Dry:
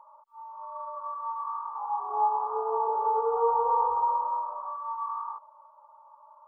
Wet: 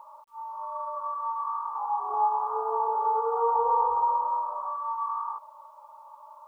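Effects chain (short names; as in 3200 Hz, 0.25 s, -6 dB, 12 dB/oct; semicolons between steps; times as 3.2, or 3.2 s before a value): 2.14–3.56 tilt +3 dB/oct; in parallel at -1 dB: compressor 20:1, threshold -38 dBFS, peak gain reduction 17.5 dB; on the sum: requantised 12-bit, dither none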